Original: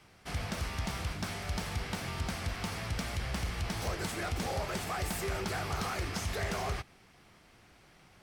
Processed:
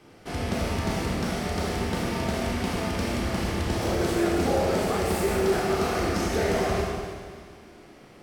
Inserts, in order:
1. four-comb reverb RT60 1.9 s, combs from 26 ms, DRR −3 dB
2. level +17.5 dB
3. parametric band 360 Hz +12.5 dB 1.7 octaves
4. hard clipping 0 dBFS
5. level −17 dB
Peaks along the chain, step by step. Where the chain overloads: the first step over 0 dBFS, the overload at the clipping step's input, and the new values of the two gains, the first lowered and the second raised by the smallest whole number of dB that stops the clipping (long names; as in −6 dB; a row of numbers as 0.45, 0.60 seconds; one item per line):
−18.5, −1.0, +6.0, 0.0, −17.0 dBFS
step 3, 6.0 dB
step 2 +11.5 dB, step 5 −11 dB